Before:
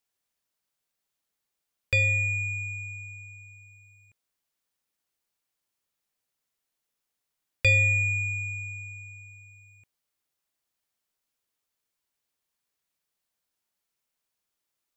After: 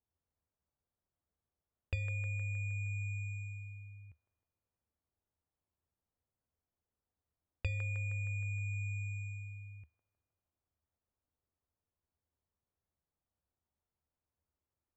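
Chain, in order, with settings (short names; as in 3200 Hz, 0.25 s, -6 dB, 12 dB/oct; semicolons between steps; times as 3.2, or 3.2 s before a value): low shelf 230 Hz +8 dB; compressor 12:1, threshold -35 dBFS, peak gain reduction 21 dB; on a send: band-limited delay 0.156 s, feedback 61%, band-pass 900 Hz, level -6.5 dB; on the sum: low-pass opened by the level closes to 970 Hz, open at -37.5 dBFS; bell 77 Hz +13 dB 0.61 oct; gain -3.5 dB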